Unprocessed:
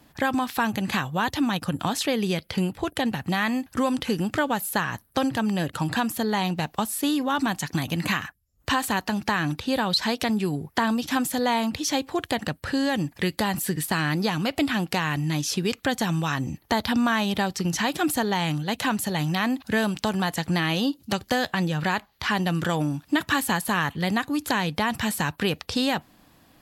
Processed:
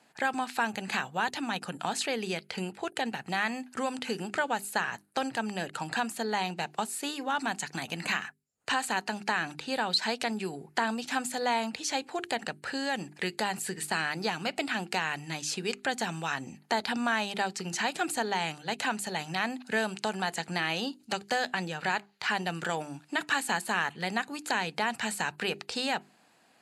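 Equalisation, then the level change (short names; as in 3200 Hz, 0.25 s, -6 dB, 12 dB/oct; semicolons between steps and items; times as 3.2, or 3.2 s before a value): speaker cabinet 230–9100 Hz, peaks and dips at 300 Hz -8 dB, 550 Hz -5 dB, 1100 Hz -8 dB, 1900 Hz -3 dB, 3400 Hz -8 dB, 5600 Hz -8 dB; low shelf 290 Hz -8 dB; notches 50/100/150/200/250/300/350/400 Hz; 0.0 dB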